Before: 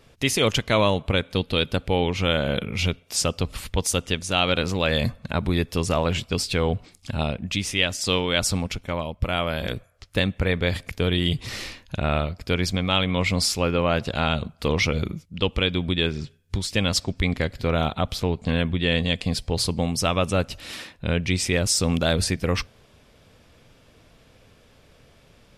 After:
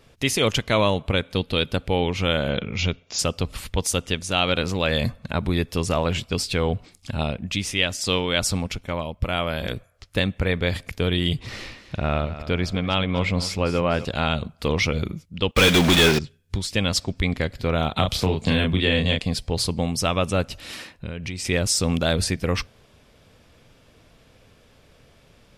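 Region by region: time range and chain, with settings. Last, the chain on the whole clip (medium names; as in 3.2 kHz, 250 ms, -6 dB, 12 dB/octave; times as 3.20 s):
2.50–3.19 s: brick-wall FIR low-pass 7.3 kHz + de-esser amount 45%
11.39–14.05 s: low-pass 3.1 kHz 6 dB/octave + feedback delay 249 ms, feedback 41%, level -13.5 dB
15.51–16.19 s: block-companded coder 5-bit + expander -31 dBFS + overdrive pedal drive 31 dB, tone 4 kHz, clips at -7 dBFS
17.96–19.19 s: doubling 32 ms -3 dB + three bands compressed up and down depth 100%
20.74–21.45 s: band-stop 3.5 kHz, Q 14 + compression 10:1, threshold -26 dBFS
whole clip: none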